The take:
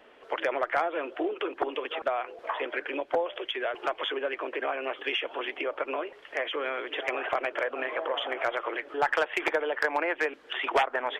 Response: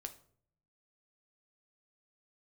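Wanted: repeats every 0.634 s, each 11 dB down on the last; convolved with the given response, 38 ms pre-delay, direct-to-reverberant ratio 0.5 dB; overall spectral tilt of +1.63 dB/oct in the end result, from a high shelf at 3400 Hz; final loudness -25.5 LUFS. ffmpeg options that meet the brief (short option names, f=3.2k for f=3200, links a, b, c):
-filter_complex "[0:a]highshelf=f=3.4k:g=6.5,aecho=1:1:634|1268|1902:0.282|0.0789|0.0221,asplit=2[a][b];[1:a]atrim=start_sample=2205,adelay=38[c];[b][c]afir=irnorm=-1:irlink=0,volume=3dB[d];[a][d]amix=inputs=2:normalize=0,volume=1dB"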